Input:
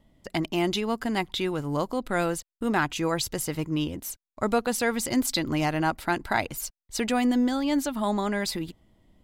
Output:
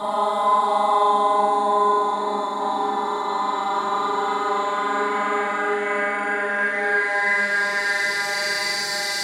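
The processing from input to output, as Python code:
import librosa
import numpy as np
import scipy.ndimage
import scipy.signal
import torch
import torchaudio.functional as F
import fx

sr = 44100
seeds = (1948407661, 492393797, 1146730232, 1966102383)

p1 = fx.paulstretch(x, sr, seeds[0], factor=21.0, window_s=0.25, from_s=8.04)
p2 = fx.weighting(p1, sr, curve='A')
p3 = fx.cheby_harmonics(p2, sr, harmonics=(6, 8), levels_db=(-33, -31), full_scale_db=-16.5)
p4 = p3 + fx.room_flutter(p3, sr, wall_m=7.4, rt60_s=1.3, dry=0)
p5 = fx.rev_fdn(p4, sr, rt60_s=0.55, lf_ratio=0.9, hf_ratio=0.3, size_ms=20.0, drr_db=-7.5)
y = p5 * 10.0 ** (-3.5 / 20.0)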